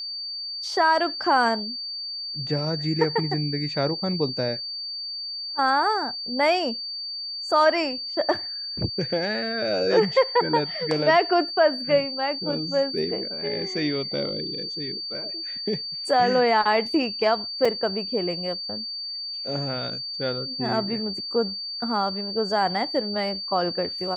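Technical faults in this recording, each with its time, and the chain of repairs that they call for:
whistle 4,600 Hz −30 dBFS
0:17.65: drop-out 4.1 ms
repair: notch filter 4,600 Hz, Q 30
repair the gap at 0:17.65, 4.1 ms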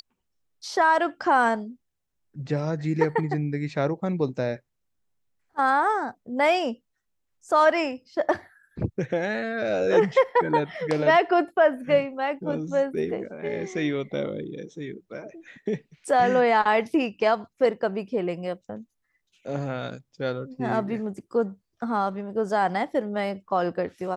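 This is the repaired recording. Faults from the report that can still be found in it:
none of them is left

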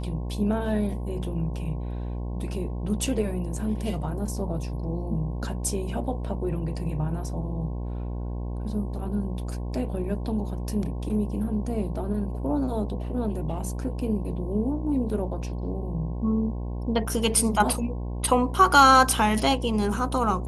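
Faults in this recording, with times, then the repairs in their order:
mains buzz 60 Hz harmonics 18 −31 dBFS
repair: hum removal 60 Hz, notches 18

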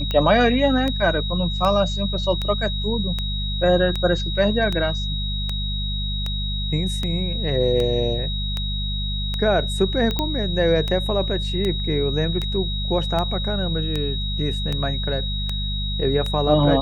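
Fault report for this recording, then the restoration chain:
mains hum 50 Hz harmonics 4 −26 dBFS
scratch tick 78 rpm −12 dBFS
whistle 3,800 Hz −28 dBFS
0:10.19: click −8 dBFS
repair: click removal
notch filter 3,800 Hz, Q 30
hum removal 50 Hz, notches 4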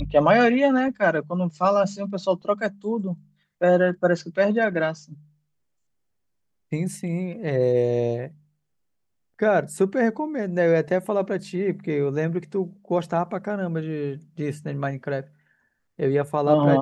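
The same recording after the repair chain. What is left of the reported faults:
none of them is left

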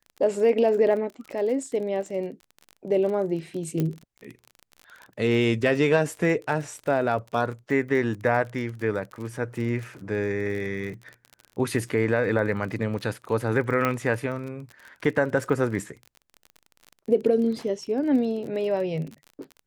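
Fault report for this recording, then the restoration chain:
surface crackle 32 per second −33 dBFS
0:03.80: click −14 dBFS
0:13.85: click −11 dBFS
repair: click removal

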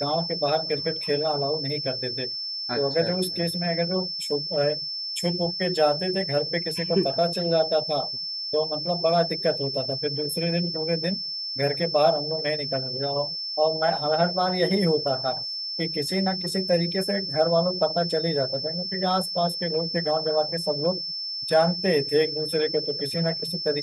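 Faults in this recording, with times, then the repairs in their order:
whistle 5,300 Hz −29 dBFS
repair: notch filter 5,300 Hz, Q 30

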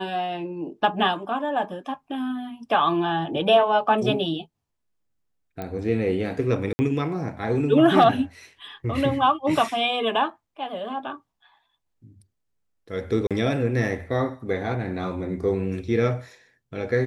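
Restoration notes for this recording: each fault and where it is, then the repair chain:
0:05.62: click −19 dBFS
0:06.73–0:06.79: drop-out 60 ms
0:13.27–0:13.31: drop-out 37 ms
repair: click removal
repair the gap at 0:06.73, 60 ms
repair the gap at 0:13.27, 37 ms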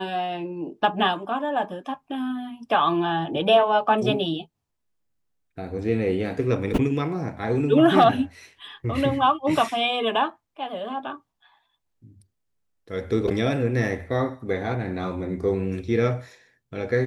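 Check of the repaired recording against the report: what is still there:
none of them is left

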